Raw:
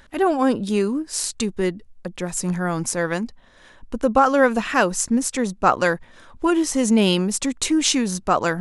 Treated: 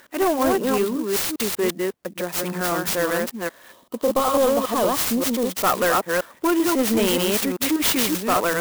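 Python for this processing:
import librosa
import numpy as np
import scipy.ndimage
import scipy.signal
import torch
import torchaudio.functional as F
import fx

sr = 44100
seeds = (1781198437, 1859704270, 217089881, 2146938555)

y = fx.reverse_delay(x, sr, ms=194, wet_db=-3.0)
y = scipy.signal.sosfilt(scipy.signal.butter(2, 310.0, 'highpass', fs=sr, output='sos'), y)
y = fx.notch(y, sr, hz=820.0, q=12.0)
y = 10.0 ** (-16.5 / 20.0) * np.tanh(y / 10.0 ** (-16.5 / 20.0))
y = fx.spec_box(y, sr, start_s=3.72, length_s=1.82, low_hz=1300.0, high_hz=2900.0, gain_db=-15)
y = fx.clock_jitter(y, sr, seeds[0], jitter_ms=0.047)
y = y * 10.0 ** (3.0 / 20.0)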